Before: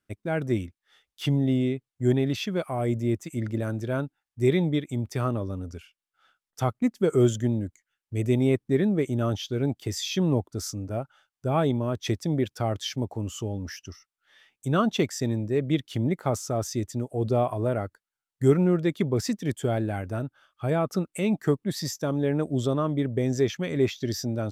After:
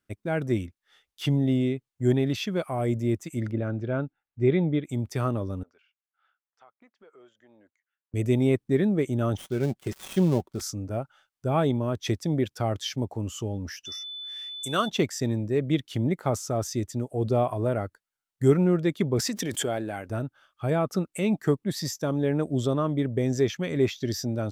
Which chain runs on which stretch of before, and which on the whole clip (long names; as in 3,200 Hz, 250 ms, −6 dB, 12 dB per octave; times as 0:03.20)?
0:03.51–0:04.84: low-pass filter 2,400 Hz + parametric band 1,000 Hz −6 dB 0.25 octaves + notch filter 1,800 Hz, Q 15
0:05.63–0:08.14: high-pass filter 980 Hz + downward compressor 3 to 1, threshold −53 dBFS + head-to-tape spacing loss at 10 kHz 37 dB
0:09.37–0:10.61: gap after every zero crossing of 0.11 ms + comb filter 5.3 ms, depth 38%
0:13.85–0:14.88: low-pass filter 12,000 Hz 24 dB per octave + RIAA equalisation recording + steady tone 3,500 Hz −35 dBFS
0:19.19–0:20.10: high-pass filter 370 Hz 6 dB per octave + background raised ahead of every attack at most 25 dB per second
whole clip: no processing